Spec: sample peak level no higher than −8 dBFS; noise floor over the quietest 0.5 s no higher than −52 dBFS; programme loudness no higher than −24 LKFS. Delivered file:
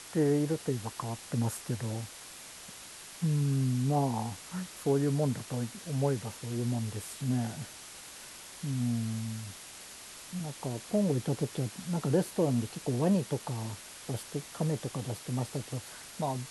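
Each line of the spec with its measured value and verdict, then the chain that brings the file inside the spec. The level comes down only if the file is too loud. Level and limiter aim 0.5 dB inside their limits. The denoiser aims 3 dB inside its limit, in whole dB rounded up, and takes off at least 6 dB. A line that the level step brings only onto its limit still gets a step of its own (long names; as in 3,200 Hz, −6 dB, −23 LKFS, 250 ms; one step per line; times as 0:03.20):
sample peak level −17.0 dBFS: in spec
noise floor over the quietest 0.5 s −48 dBFS: out of spec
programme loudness −33.0 LKFS: in spec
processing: broadband denoise 7 dB, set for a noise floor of −48 dBFS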